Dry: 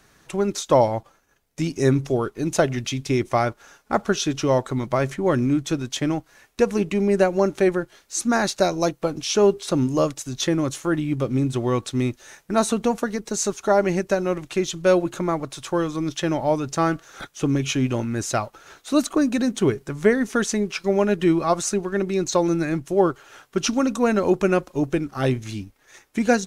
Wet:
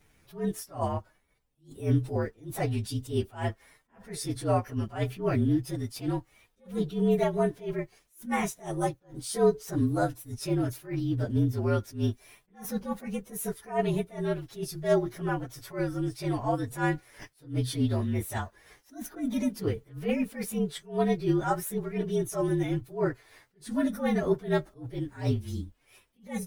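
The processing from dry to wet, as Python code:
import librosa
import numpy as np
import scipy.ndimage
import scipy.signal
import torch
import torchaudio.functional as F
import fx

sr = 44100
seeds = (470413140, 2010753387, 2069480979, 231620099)

y = fx.partial_stretch(x, sr, pct=115)
y = fx.low_shelf(y, sr, hz=130.0, db=8.5)
y = fx.attack_slew(y, sr, db_per_s=190.0)
y = F.gain(torch.from_numpy(y), -5.5).numpy()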